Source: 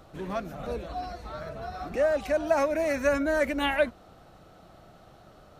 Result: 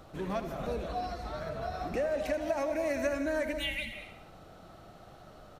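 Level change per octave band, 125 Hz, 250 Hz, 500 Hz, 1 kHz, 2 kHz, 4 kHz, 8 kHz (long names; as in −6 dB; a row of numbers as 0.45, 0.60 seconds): −1.0, −4.5, −6.0, −5.0, −6.0, −1.0, −4.0 decibels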